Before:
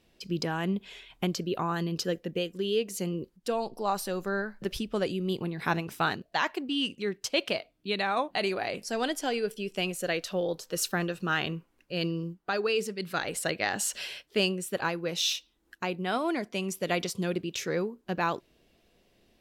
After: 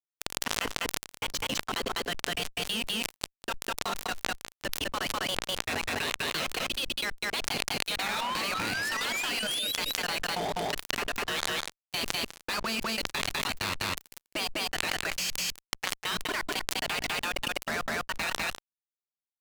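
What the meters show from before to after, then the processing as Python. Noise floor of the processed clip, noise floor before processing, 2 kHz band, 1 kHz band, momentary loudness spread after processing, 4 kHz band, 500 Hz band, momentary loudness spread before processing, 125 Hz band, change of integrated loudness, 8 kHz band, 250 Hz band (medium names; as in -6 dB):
under -85 dBFS, -69 dBFS, +2.5 dB, -1.0 dB, 5 LU, +4.0 dB, -7.5 dB, 5 LU, -8.5 dB, 0.0 dB, +2.5 dB, -8.0 dB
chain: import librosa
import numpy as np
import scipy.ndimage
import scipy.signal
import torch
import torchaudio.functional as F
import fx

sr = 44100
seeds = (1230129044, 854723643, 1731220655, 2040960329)

y = fx.hum_notches(x, sr, base_hz=60, count=6)
y = fx.spec_gate(y, sr, threshold_db=-15, keep='weak')
y = scipy.signal.sosfilt(scipy.signal.butter(2, 46.0, 'highpass', fs=sr, output='sos'), y)
y = fx.high_shelf(y, sr, hz=7900.0, db=-11.5)
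y = fx.level_steps(y, sr, step_db=22)
y = fx.spec_paint(y, sr, seeds[0], shape='rise', start_s=7.98, length_s=1.75, low_hz=740.0, high_hz=4000.0, level_db=-54.0)
y = fx.fuzz(y, sr, gain_db=51.0, gate_db=-56.0)
y = y + 10.0 ** (-18.0 / 20.0) * np.pad(y, (int(201 * sr / 1000.0), 0))[:len(y)]
y = fx.env_flatten(y, sr, amount_pct=100)
y = F.gain(torch.from_numpy(y), -16.0).numpy()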